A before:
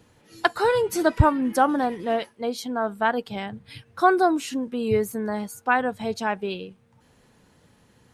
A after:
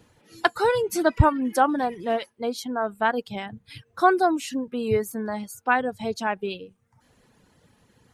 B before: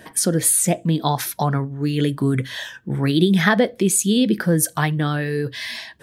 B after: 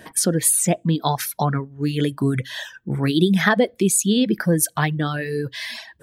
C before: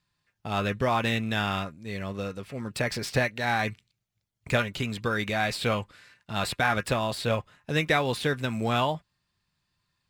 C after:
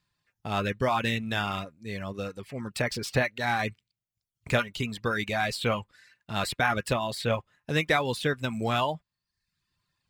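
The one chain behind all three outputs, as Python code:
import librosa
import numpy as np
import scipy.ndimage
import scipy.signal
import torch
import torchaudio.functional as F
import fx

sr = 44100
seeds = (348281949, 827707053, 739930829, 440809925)

y = fx.dereverb_blind(x, sr, rt60_s=0.69)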